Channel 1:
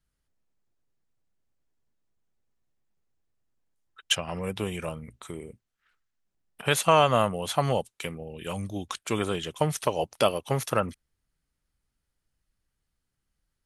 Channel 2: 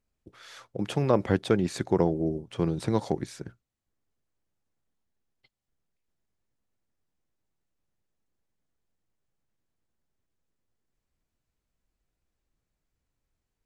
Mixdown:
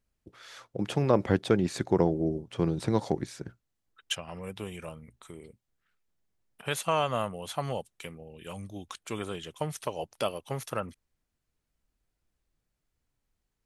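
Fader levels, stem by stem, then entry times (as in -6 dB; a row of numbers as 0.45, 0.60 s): -7.5, -0.5 dB; 0.00, 0.00 s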